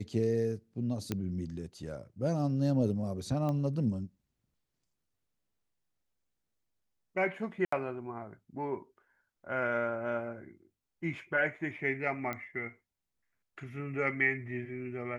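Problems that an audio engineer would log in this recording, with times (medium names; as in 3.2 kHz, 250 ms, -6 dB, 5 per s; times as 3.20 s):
1.12 s: pop -18 dBFS
3.49 s: pop -24 dBFS
7.65–7.72 s: dropout 74 ms
12.33 s: pop -22 dBFS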